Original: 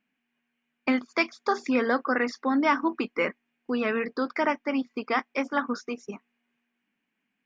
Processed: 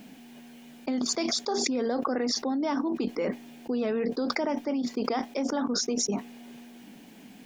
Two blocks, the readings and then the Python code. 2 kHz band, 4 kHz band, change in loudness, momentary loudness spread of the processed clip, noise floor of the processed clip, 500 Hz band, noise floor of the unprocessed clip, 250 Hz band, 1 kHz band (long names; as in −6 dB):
−10.5 dB, +7.5 dB, −1.5 dB, 20 LU, −50 dBFS, −1.0 dB, −80 dBFS, −0.5 dB, −5.5 dB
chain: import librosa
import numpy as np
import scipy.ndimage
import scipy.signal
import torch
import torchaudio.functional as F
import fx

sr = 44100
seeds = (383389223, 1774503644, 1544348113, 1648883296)

y = fx.band_shelf(x, sr, hz=1700.0, db=-12.5, octaves=1.7)
y = fx.env_flatten(y, sr, amount_pct=100)
y = y * librosa.db_to_amplitude(-6.5)